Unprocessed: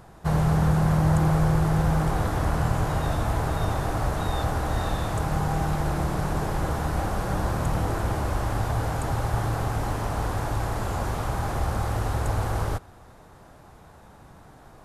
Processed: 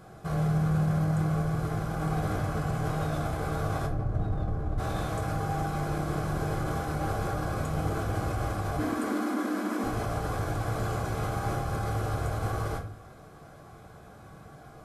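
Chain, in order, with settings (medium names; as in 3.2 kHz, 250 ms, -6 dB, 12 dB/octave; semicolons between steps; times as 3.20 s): 3.86–4.78 s: tilt EQ -4 dB/octave; peak limiter -22 dBFS, peak gain reduction 22.5 dB; 8.78–9.84 s: frequency shift +190 Hz; comb of notches 920 Hz; simulated room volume 31 m³, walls mixed, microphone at 0.51 m; trim -2 dB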